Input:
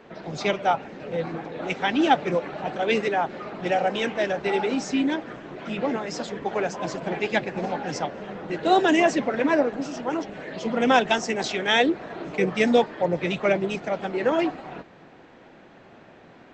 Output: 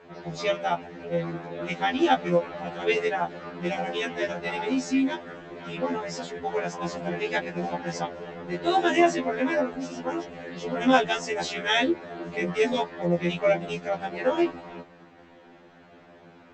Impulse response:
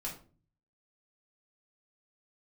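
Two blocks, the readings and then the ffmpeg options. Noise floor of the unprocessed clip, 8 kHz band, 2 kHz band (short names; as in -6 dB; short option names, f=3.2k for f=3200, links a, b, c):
-50 dBFS, -2.5 dB, -2.5 dB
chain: -af "afftfilt=real='re*2*eq(mod(b,4),0)':imag='im*2*eq(mod(b,4),0)':win_size=2048:overlap=0.75"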